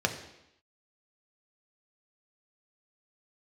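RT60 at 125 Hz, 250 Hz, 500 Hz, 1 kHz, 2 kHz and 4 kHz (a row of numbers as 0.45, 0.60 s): 0.75, 0.85, 0.80, 0.85, 0.85, 0.85 s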